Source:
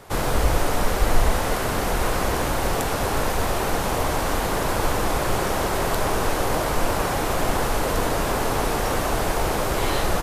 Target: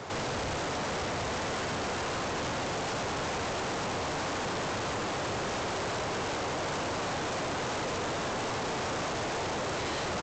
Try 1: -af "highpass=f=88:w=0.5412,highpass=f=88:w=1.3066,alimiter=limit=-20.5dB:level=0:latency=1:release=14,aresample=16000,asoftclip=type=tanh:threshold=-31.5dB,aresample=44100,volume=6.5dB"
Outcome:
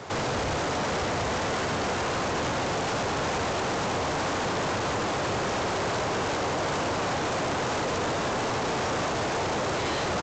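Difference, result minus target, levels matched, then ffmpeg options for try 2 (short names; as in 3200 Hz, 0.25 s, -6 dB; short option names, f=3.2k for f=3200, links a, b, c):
soft clip: distortion -4 dB
-af "highpass=f=88:w=0.5412,highpass=f=88:w=1.3066,alimiter=limit=-20.5dB:level=0:latency=1:release=14,aresample=16000,asoftclip=type=tanh:threshold=-38dB,aresample=44100,volume=6.5dB"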